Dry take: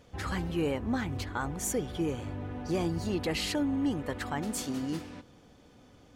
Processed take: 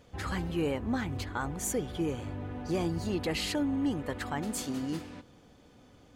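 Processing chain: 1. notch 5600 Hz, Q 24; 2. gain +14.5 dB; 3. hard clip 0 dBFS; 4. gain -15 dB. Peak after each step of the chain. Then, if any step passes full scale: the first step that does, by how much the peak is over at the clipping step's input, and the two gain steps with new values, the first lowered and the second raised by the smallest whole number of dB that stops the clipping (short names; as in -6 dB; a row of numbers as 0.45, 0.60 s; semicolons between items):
-20.0, -5.5, -5.5, -20.5 dBFS; no overload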